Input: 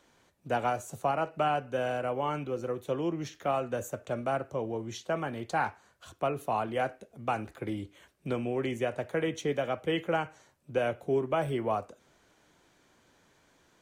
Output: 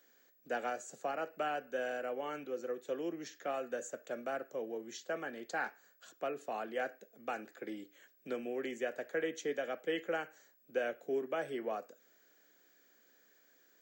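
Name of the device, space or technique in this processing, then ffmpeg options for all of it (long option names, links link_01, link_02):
old television with a line whistle: -af "highpass=frequency=220:width=0.5412,highpass=frequency=220:width=1.3066,equalizer=frequency=480:width_type=q:width=4:gain=4,equalizer=frequency=980:width_type=q:width=4:gain=-9,equalizer=frequency=1700:width_type=q:width=4:gain=9,equalizer=frequency=4900:width_type=q:width=4:gain=6,equalizer=frequency=7200:width_type=q:width=4:gain=9,lowpass=frequency=8000:width=0.5412,lowpass=frequency=8000:width=1.3066,aeval=exprs='val(0)+0.00112*sin(2*PI*15734*n/s)':channel_layout=same,volume=-8dB"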